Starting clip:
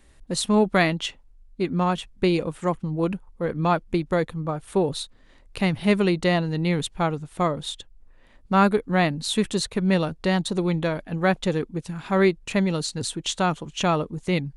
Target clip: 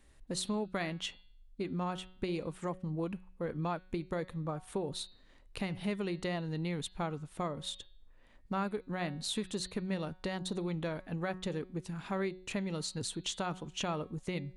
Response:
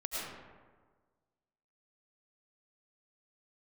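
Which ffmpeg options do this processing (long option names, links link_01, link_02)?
-af "acompressor=threshold=-25dB:ratio=4,bandreject=frequency=184.9:width_type=h:width=4,bandreject=frequency=369.8:width_type=h:width=4,bandreject=frequency=554.7:width_type=h:width=4,bandreject=frequency=739.6:width_type=h:width=4,bandreject=frequency=924.5:width_type=h:width=4,bandreject=frequency=1109.4:width_type=h:width=4,bandreject=frequency=1294.3:width_type=h:width=4,bandreject=frequency=1479.2:width_type=h:width=4,bandreject=frequency=1664.1:width_type=h:width=4,bandreject=frequency=1849:width_type=h:width=4,bandreject=frequency=2033.9:width_type=h:width=4,bandreject=frequency=2218.8:width_type=h:width=4,bandreject=frequency=2403.7:width_type=h:width=4,bandreject=frequency=2588.6:width_type=h:width=4,bandreject=frequency=2773.5:width_type=h:width=4,bandreject=frequency=2958.4:width_type=h:width=4,bandreject=frequency=3143.3:width_type=h:width=4,bandreject=frequency=3328.2:width_type=h:width=4,bandreject=frequency=3513.1:width_type=h:width=4,bandreject=frequency=3698:width_type=h:width=4,bandreject=frequency=3882.9:width_type=h:width=4,bandreject=frequency=4067.8:width_type=h:width=4,bandreject=frequency=4252.7:width_type=h:width=4,bandreject=frequency=4437.6:width_type=h:width=4,bandreject=frequency=4622.5:width_type=h:width=4,bandreject=frequency=4807.4:width_type=h:width=4,volume=-7.5dB"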